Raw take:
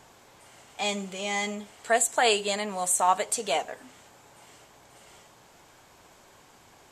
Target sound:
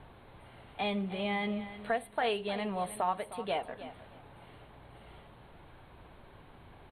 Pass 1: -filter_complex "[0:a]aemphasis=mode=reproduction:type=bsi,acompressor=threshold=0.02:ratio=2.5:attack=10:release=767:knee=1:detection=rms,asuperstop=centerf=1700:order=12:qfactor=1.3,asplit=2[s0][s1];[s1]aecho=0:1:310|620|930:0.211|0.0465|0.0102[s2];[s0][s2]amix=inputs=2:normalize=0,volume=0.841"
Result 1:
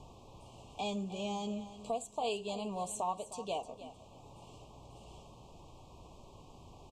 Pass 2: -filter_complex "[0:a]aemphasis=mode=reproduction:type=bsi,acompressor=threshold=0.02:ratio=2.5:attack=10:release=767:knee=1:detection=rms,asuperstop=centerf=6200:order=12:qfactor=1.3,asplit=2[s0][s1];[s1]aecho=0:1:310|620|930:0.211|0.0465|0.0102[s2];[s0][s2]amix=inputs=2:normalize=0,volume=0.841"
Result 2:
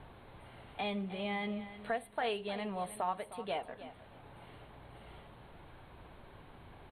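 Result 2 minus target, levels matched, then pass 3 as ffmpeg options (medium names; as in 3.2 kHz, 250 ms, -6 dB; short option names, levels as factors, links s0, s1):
compression: peak gain reduction +4 dB
-filter_complex "[0:a]aemphasis=mode=reproduction:type=bsi,acompressor=threshold=0.0422:ratio=2.5:attack=10:release=767:knee=1:detection=rms,asuperstop=centerf=6200:order=12:qfactor=1.3,asplit=2[s0][s1];[s1]aecho=0:1:310|620|930:0.211|0.0465|0.0102[s2];[s0][s2]amix=inputs=2:normalize=0,volume=0.841"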